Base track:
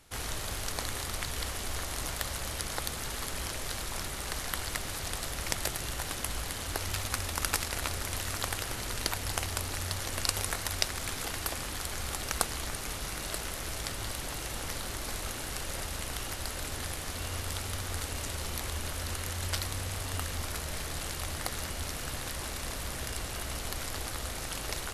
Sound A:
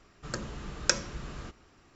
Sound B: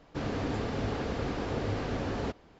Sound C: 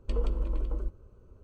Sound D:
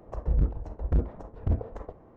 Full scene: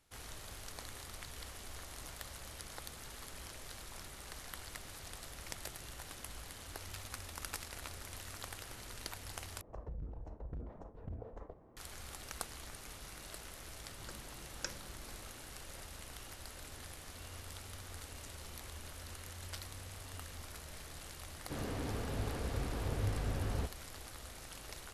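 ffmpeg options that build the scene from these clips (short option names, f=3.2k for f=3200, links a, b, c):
-filter_complex "[0:a]volume=-13dB[a];[4:a]acompressor=threshold=-34dB:ratio=10:attack=13:release=34:knee=6:detection=rms[b];[2:a]asubboost=boost=6.5:cutoff=120[c];[a]asplit=2[d][e];[d]atrim=end=9.614[f];[b]atrim=end=2.16,asetpts=PTS-STARTPTS,volume=-8dB[g];[e]atrim=start=11.766[h];[1:a]atrim=end=1.95,asetpts=PTS-STARTPTS,volume=-16.5dB,afade=t=in:d=0.004:c=hsin,afade=t=out:st=1.946:d=0.004:c=hsin,adelay=13750[i];[c]atrim=end=2.59,asetpts=PTS-STARTPTS,volume=-8dB,afade=t=in:d=0.004:c=hsin,afade=t=out:st=2.586:d=0.004:c=hsin,adelay=21350[j];[f][g]acrossfade=d=0.004:c1=hsin:c2=hsin[k];[k][h]acrossfade=d=0.004:c1=hsin:c2=hsin[l];[l][i][j]amix=inputs=3:normalize=0"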